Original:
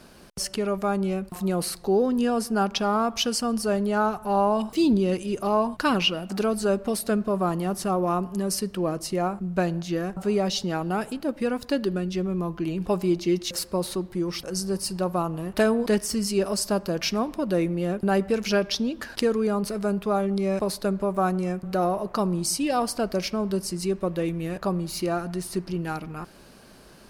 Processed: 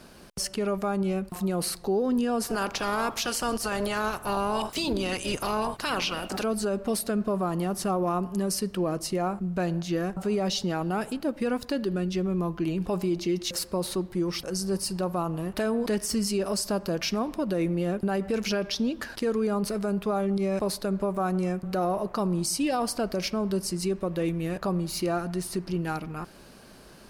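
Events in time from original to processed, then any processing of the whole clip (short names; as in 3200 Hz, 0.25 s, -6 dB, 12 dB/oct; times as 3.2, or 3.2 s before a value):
2.41–6.42 spectral limiter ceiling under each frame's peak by 19 dB
whole clip: limiter -19 dBFS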